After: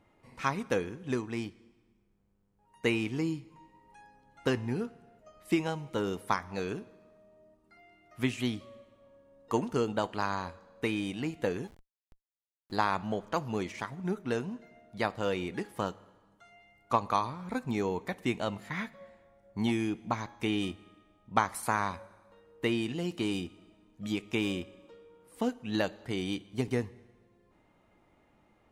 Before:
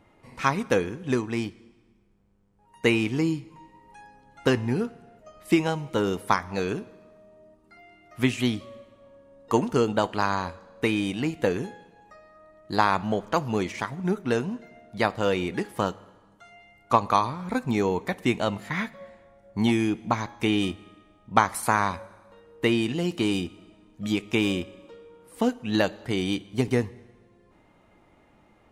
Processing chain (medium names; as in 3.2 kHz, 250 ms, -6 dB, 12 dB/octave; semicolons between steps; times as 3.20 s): 11.67–12.72 s: Schmitt trigger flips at -39 dBFS; trim -7 dB